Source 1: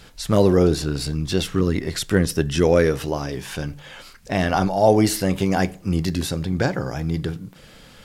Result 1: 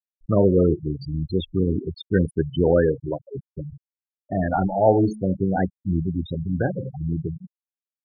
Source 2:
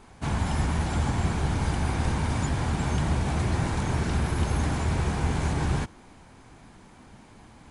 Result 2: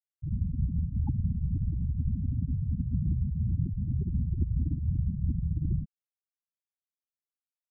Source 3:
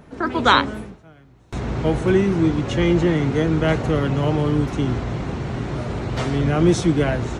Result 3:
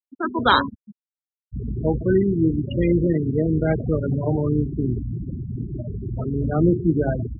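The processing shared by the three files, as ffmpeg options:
-af "bandreject=f=71.55:t=h:w=4,bandreject=f=143.1:t=h:w=4,bandreject=f=214.65:t=h:w=4,bandreject=f=286.2:t=h:w=4,bandreject=f=357.75:t=h:w=4,bandreject=f=429.3:t=h:w=4,bandreject=f=500.85:t=h:w=4,bandreject=f=572.4:t=h:w=4,bandreject=f=643.95:t=h:w=4,bandreject=f=715.5:t=h:w=4,bandreject=f=787.05:t=h:w=4,bandreject=f=858.6:t=h:w=4,bandreject=f=930.15:t=h:w=4,bandreject=f=1001.7:t=h:w=4,bandreject=f=1073.25:t=h:w=4,bandreject=f=1144.8:t=h:w=4,bandreject=f=1216.35:t=h:w=4,bandreject=f=1287.9:t=h:w=4,bandreject=f=1359.45:t=h:w=4,bandreject=f=1431:t=h:w=4,bandreject=f=1502.55:t=h:w=4,bandreject=f=1574.1:t=h:w=4,bandreject=f=1645.65:t=h:w=4,bandreject=f=1717.2:t=h:w=4,bandreject=f=1788.75:t=h:w=4,bandreject=f=1860.3:t=h:w=4,bandreject=f=1931.85:t=h:w=4,bandreject=f=2003.4:t=h:w=4,bandreject=f=2074.95:t=h:w=4,bandreject=f=2146.5:t=h:w=4,bandreject=f=2218.05:t=h:w=4,bandreject=f=2289.6:t=h:w=4,bandreject=f=2361.15:t=h:w=4,bandreject=f=2432.7:t=h:w=4,bandreject=f=2504.25:t=h:w=4,bandreject=f=2575.8:t=h:w=4,bandreject=f=2647.35:t=h:w=4,afftfilt=real='re*gte(hypot(re,im),0.2)':imag='im*gte(hypot(re,im),0.2)':win_size=1024:overlap=0.75,volume=0.891"

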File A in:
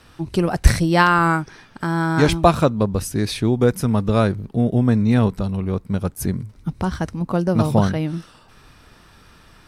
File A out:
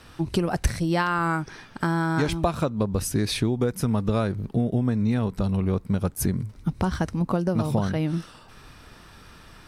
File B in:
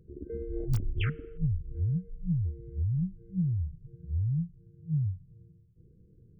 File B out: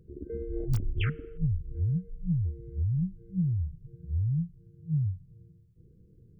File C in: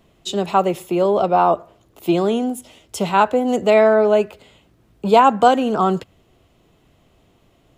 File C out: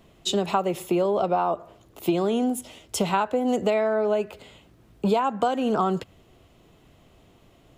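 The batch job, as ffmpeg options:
-af "acompressor=threshold=0.1:ratio=12,volume=1.12"

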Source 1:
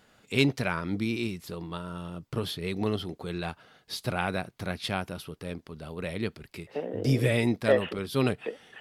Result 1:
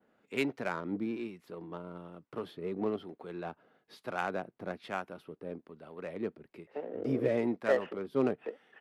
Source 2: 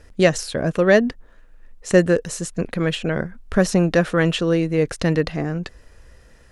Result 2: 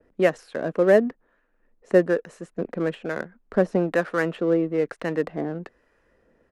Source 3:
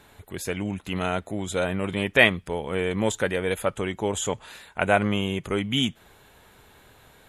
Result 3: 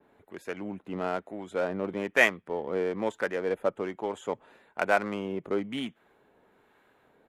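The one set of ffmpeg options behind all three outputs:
-filter_complex "[0:a]adynamicequalizer=threshold=0.00794:dfrequency=6400:dqfactor=0.77:tfrequency=6400:tqfactor=0.77:attack=5:release=100:ratio=0.375:range=2.5:mode=cutabove:tftype=bell,acrossover=split=830[s0][s1];[s0]aeval=exprs='val(0)*(1-0.5/2+0.5/2*cos(2*PI*1.1*n/s))':c=same[s2];[s1]aeval=exprs='val(0)*(1-0.5/2-0.5/2*cos(2*PI*1.1*n/s))':c=same[s3];[s2][s3]amix=inputs=2:normalize=0,acrossover=split=210 2400:gain=0.0891 1 0.158[s4][s5][s6];[s4][s5][s6]amix=inputs=3:normalize=0,asplit=2[s7][s8];[s8]adynamicsmooth=sensitivity=5:basefreq=510,volume=0.891[s9];[s7][s9]amix=inputs=2:normalize=0,aresample=32000,aresample=44100,volume=0.531"

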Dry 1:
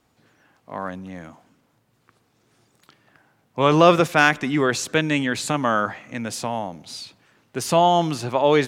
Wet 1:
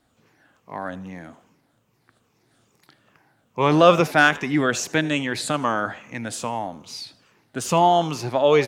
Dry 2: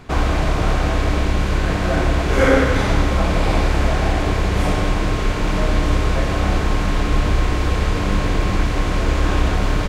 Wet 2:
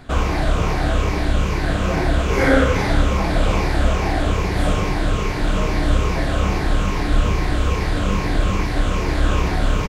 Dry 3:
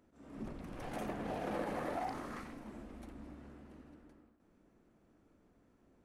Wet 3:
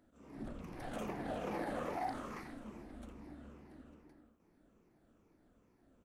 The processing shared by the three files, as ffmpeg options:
-filter_complex "[0:a]afftfilt=real='re*pow(10,7/40*sin(2*PI*(0.79*log(max(b,1)*sr/1024/100)/log(2)-(-2.4)*(pts-256)/sr)))':imag='im*pow(10,7/40*sin(2*PI*(0.79*log(max(b,1)*sr/1024/100)/log(2)-(-2.4)*(pts-256)/sr)))':win_size=1024:overlap=0.75,asplit=2[s0][s1];[s1]asplit=3[s2][s3][s4];[s2]adelay=80,afreqshift=110,volume=0.0891[s5];[s3]adelay=160,afreqshift=220,volume=0.0367[s6];[s4]adelay=240,afreqshift=330,volume=0.015[s7];[s5][s6][s7]amix=inputs=3:normalize=0[s8];[s0][s8]amix=inputs=2:normalize=0,volume=0.841"

